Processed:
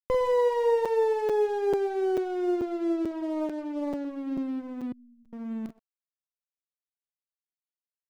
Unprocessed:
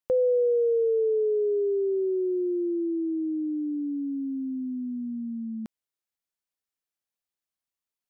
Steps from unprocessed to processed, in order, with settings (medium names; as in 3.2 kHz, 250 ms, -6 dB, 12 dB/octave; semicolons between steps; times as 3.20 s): comb filter that takes the minimum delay 0.43 ms; doubling 45 ms -8 dB; reverberation RT60 0.80 s, pre-delay 107 ms, DRR 13.5 dB; crossover distortion -45 dBFS; 4.92–5.33 s: inverse Chebyshev low-pass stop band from 770 Hz, stop band 80 dB; crackling interface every 0.44 s, samples 256, zero, from 0.85 s; 3.11–4.05 s: loudspeaker Doppler distortion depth 0.58 ms